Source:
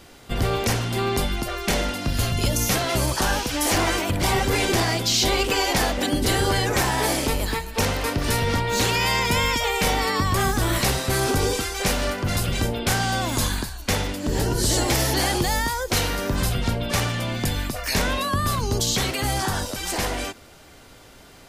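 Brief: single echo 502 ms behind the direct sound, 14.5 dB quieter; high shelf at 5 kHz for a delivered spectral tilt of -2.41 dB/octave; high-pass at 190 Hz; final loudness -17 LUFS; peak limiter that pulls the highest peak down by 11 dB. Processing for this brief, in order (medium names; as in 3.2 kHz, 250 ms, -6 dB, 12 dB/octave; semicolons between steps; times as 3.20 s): high-pass 190 Hz; treble shelf 5 kHz +8.5 dB; peak limiter -15 dBFS; delay 502 ms -14.5 dB; trim +7 dB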